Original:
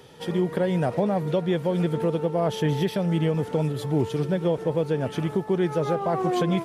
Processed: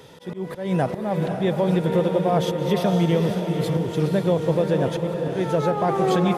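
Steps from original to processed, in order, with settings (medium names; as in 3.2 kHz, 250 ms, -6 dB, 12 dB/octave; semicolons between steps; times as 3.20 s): slow attack 220 ms; speed mistake 24 fps film run at 25 fps; echo that smears into a reverb 513 ms, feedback 43%, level -5 dB; trim +3 dB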